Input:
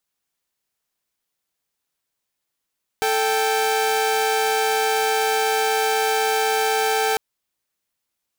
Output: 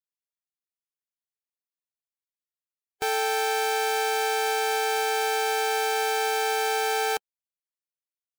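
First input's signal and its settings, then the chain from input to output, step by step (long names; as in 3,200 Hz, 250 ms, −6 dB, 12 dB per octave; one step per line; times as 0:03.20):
held notes A4/G5 saw, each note −18.5 dBFS 4.15 s
spectral dynamics exaggerated over time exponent 1.5
parametric band 210 Hz −6 dB 0.34 octaves
brickwall limiter −18 dBFS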